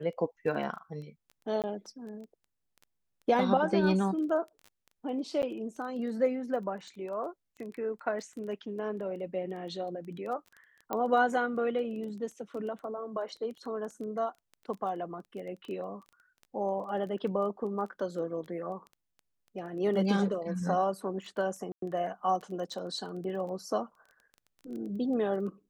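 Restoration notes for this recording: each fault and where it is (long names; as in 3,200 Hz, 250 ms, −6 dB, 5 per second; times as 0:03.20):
surface crackle 12 per second −39 dBFS
0:01.62–0:01.64: drop-out 18 ms
0:05.42–0:05.43: drop-out 9.5 ms
0:10.93: click −19 dBFS
0:21.72–0:21.82: drop-out 103 ms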